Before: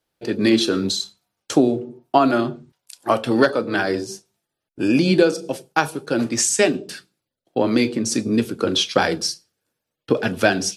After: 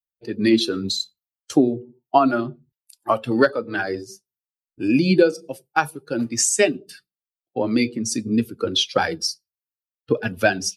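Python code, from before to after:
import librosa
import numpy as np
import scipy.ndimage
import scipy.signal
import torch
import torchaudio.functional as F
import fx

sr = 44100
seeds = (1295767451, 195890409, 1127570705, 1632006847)

y = fx.bin_expand(x, sr, power=1.5)
y = F.gain(torch.from_numpy(y), 1.5).numpy()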